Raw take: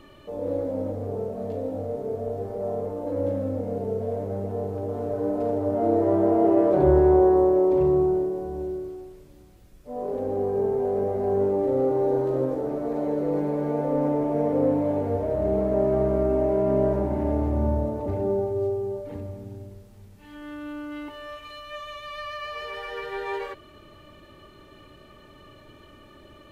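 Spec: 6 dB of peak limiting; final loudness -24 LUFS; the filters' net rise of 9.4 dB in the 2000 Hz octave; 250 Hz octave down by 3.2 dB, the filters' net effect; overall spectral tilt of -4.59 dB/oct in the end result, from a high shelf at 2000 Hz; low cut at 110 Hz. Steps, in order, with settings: HPF 110 Hz; bell 250 Hz -5.5 dB; high shelf 2000 Hz +8.5 dB; bell 2000 Hz +6.5 dB; gain +3 dB; limiter -12 dBFS

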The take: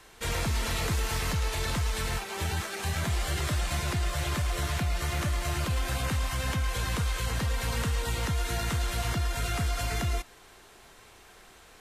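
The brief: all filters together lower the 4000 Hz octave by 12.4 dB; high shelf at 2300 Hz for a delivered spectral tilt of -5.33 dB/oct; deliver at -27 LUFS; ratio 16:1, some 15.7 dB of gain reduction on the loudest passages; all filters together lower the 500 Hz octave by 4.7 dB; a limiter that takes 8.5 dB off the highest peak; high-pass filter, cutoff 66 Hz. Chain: HPF 66 Hz; bell 500 Hz -5.5 dB; high shelf 2300 Hz -9 dB; bell 4000 Hz -8 dB; compressor 16:1, threshold -43 dBFS; gain +23.5 dB; limiter -17.5 dBFS

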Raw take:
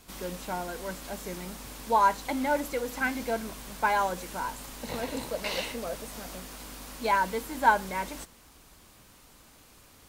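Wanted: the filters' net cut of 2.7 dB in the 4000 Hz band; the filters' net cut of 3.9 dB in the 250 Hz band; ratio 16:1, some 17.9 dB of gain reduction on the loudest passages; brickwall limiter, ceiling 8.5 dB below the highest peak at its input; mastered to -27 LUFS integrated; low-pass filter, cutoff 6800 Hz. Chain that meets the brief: LPF 6800 Hz; bell 250 Hz -4.5 dB; bell 4000 Hz -3 dB; compressor 16:1, threshold -34 dBFS; gain +16 dB; limiter -17 dBFS

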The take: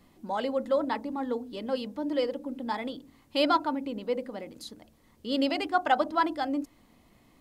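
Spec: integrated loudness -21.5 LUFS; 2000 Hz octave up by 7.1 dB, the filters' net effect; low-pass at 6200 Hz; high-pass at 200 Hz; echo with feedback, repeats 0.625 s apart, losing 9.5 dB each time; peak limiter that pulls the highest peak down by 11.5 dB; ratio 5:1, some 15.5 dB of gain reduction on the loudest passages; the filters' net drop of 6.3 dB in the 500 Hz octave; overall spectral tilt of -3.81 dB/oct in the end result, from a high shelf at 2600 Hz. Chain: HPF 200 Hz; LPF 6200 Hz; bell 500 Hz -8 dB; bell 2000 Hz +7.5 dB; high shelf 2600 Hz +6.5 dB; compressor 5:1, threshold -36 dBFS; limiter -34 dBFS; feedback echo 0.625 s, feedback 33%, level -9.5 dB; gain +22 dB

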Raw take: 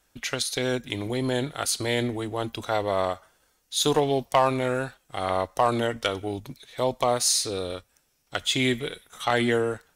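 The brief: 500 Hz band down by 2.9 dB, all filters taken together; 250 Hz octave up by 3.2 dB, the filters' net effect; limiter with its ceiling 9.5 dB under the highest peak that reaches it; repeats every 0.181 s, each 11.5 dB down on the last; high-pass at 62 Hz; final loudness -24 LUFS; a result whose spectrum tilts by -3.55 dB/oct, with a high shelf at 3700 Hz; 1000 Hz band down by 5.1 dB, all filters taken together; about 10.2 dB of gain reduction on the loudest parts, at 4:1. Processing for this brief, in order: HPF 62 Hz; bell 250 Hz +5 dB; bell 500 Hz -3.5 dB; bell 1000 Hz -6.5 dB; high shelf 3700 Hz +6.5 dB; compressor 4:1, threshold -27 dBFS; limiter -20 dBFS; feedback echo 0.181 s, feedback 27%, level -11.5 dB; gain +8.5 dB

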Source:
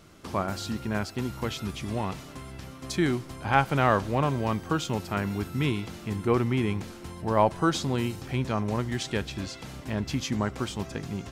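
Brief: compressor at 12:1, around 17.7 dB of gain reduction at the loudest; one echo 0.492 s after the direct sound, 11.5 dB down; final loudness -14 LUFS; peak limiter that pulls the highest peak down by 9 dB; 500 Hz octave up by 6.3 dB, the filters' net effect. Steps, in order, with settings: bell 500 Hz +8 dB; compressor 12:1, threshold -31 dBFS; limiter -28 dBFS; echo 0.492 s -11.5 dB; gain +24.5 dB

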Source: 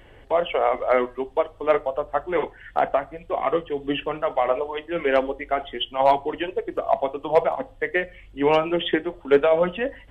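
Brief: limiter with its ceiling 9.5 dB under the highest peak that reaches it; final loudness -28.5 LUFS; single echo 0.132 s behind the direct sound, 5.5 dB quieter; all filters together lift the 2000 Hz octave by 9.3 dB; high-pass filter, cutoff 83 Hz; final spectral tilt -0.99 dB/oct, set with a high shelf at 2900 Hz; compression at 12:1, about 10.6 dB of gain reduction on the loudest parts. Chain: HPF 83 Hz; bell 2000 Hz +8 dB; high shelf 2900 Hz +8 dB; compressor 12:1, threshold -21 dBFS; limiter -17.5 dBFS; echo 0.132 s -5.5 dB

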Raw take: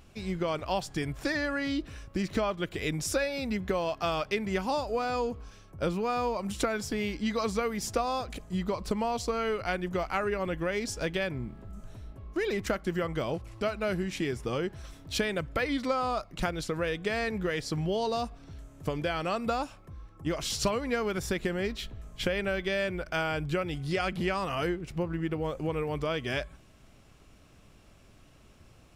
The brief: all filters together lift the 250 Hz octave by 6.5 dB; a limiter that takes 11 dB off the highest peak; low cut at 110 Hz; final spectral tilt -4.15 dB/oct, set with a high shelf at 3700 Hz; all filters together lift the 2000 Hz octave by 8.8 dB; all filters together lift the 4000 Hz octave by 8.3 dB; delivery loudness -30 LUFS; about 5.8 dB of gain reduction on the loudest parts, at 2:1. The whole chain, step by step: HPF 110 Hz; bell 250 Hz +9 dB; bell 2000 Hz +8 dB; high shelf 3700 Hz +7 dB; bell 4000 Hz +3.5 dB; compressor 2:1, threshold -29 dBFS; gain +4 dB; limiter -20.5 dBFS

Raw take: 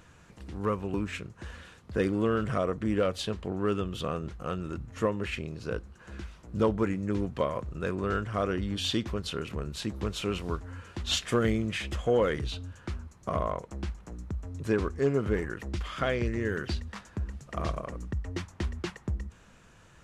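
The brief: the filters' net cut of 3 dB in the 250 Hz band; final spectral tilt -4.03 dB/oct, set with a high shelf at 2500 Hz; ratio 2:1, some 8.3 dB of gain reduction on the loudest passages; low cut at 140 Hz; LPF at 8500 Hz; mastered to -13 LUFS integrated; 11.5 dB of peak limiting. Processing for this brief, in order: HPF 140 Hz; LPF 8500 Hz; bell 250 Hz -3.5 dB; high shelf 2500 Hz +8.5 dB; compressor 2:1, threshold -36 dBFS; gain +29.5 dB; limiter -1.5 dBFS

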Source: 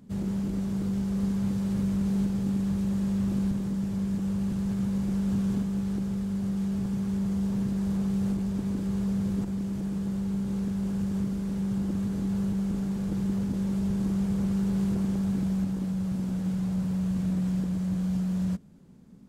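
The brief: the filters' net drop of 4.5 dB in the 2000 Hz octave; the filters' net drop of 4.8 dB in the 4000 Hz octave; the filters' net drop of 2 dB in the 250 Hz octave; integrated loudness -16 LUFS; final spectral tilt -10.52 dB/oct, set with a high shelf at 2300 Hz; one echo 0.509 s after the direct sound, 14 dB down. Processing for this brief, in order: bell 250 Hz -3 dB; bell 2000 Hz -6 dB; high shelf 2300 Hz +4 dB; bell 4000 Hz -8.5 dB; echo 0.509 s -14 dB; gain +14.5 dB

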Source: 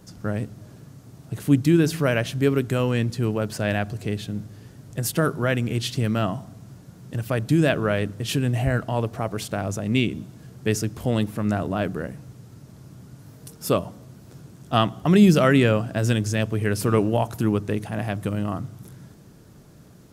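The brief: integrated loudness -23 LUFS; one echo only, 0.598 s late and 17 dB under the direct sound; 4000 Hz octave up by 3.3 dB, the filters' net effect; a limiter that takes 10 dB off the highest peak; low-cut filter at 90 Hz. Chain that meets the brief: HPF 90 Hz; bell 4000 Hz +4.5 dB; limiter -12.5 dBFS; echo 0.598 s -17 dB; gain +2.5 dB

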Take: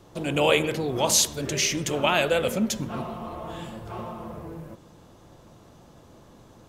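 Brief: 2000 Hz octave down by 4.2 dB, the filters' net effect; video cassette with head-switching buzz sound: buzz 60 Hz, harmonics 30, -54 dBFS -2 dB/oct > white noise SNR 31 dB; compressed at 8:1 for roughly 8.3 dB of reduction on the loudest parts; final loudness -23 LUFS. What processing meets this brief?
bell 2000 Hz -6 dB; compressor 8:1, threshold -25 dBFS; buzz 60 Hz, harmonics 30, -54 dBFS -2 dB/oct; white noise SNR 31 dB; gain +8 dB

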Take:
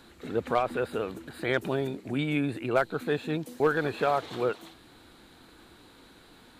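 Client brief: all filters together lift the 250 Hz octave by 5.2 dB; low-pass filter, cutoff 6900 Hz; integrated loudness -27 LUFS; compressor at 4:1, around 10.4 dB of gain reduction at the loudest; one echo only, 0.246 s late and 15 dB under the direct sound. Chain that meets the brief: LPF 6900 Hz; bell 250 Hz +6.5 dB; compressor 4:1, threshold -30 dBFS; echo 0.246 s -15 dB; gain +7.5 dB

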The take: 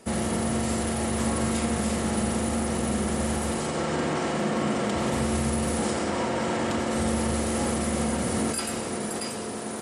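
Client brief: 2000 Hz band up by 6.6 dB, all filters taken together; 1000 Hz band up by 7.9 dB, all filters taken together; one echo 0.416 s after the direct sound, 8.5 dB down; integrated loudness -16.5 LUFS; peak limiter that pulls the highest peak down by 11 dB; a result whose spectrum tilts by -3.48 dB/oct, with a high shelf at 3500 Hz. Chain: bell 1000 Hz +9 dB; bell 2000 Hz +3.5 dB; high shelf 3500 Hz +6 dB; limiter -21 dBFS; echo 0.416 s -8.5 dB; gain +12 dB

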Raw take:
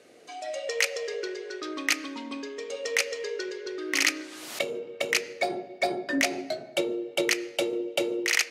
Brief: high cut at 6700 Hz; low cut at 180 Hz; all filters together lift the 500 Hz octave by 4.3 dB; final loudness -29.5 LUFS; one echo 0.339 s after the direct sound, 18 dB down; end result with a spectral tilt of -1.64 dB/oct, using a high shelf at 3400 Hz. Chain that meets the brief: HPF 180 Hz; LPF 6700 Hz; bell 500 Hz +5.5 dB; high shelf 3400 Hz -4.5 dB; echo 0.339 s -18 dB; gain -1.5 dB

